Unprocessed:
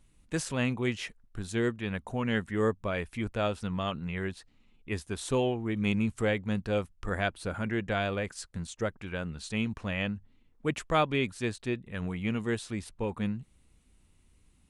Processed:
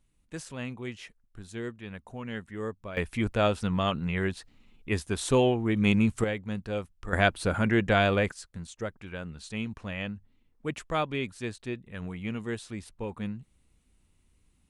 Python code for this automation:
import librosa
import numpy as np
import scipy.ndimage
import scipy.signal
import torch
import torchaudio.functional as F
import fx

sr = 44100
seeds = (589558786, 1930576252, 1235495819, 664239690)

y = fx.gain(x, sr, db=fx.steps((0.0, -7.5), (2.97, 5.0), (6.24, -3.0), (7.13, 7.0), (8.32, -3.0)))